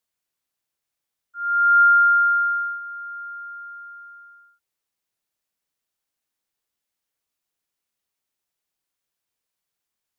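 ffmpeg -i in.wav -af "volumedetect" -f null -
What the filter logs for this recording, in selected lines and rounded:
mean_volume: -25.7 dB
max_volume: -9.8 dB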